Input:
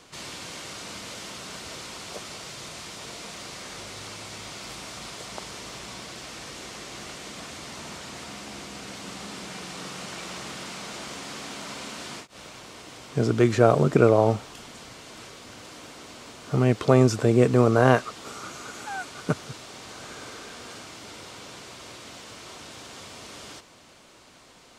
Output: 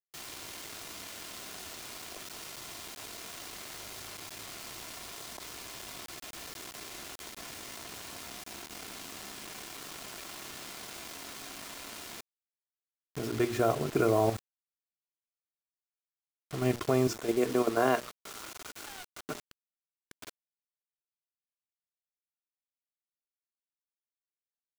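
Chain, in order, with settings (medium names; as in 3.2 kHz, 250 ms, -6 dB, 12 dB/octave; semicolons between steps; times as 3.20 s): 17.07–19.52 s: high-pass 210 Hz 12 dB/octave; hum notches 60/120/180/240/300/360/420/480/540/600 Hz; comb 2.9 ms, depth 42%; level held to a coarse grid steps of 10 dB; bit crusher 6-bit; trim -5 dB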